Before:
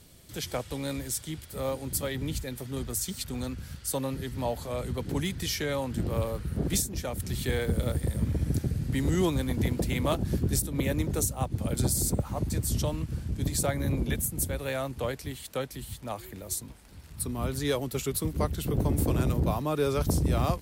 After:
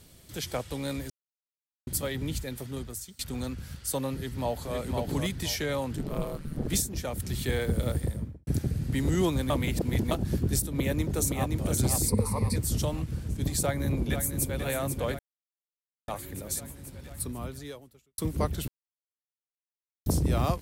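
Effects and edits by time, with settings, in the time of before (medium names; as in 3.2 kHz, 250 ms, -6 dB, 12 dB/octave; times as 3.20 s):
1.10–1.87 s: mute
2.63–3.19 s: fade out, to -23 dB
4.14–4.75 s: echo throw 510 ms, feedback 25%, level -3.5 dB
5.96–6.69 s: ring modulator 76 Hz
7.97–8.47 s: studio fade out
9.50–10.11 s: reverse
10.67–11.52 s: echo throw 520 ms, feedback 45%, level -4 dB
12.08–12.56 s: rippled EQ curve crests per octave 0.91, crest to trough 15 dB
13.62–14.55 s: echo throw 490 ms, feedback 75%, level -7.5 dB
15.19–16.08 s: mute
17.14–18.18 s: fade out quadratic
18.68–20.06 s: mute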